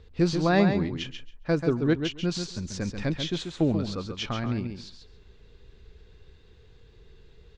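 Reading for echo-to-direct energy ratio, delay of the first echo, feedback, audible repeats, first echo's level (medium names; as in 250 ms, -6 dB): -7.0 dB, 137 ms, 15%, 2, -7.0 dB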